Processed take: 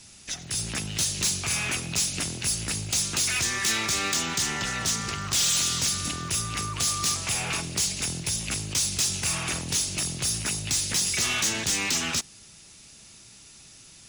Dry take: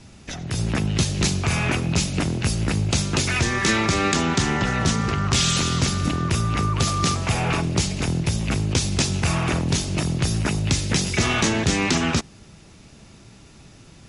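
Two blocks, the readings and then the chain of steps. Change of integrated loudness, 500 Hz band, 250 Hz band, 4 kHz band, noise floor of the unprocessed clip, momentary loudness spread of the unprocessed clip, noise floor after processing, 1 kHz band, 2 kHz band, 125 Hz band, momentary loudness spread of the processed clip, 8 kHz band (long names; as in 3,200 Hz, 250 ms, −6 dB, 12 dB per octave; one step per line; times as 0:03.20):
−3.5 dB, −12.0 dB, −13.5 dB, −1.0 dB, −48 dBFS, 4 LU, −50 dBFS, −8.5 dB, −4.5 dB, −13.5 dB, 5 LU, +3.0 dB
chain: first-order pre-emphasis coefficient 0.9
soft clipping −28 dBFS, distortion −9 dB
noise that follows the level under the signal 34 dB
level +8 dB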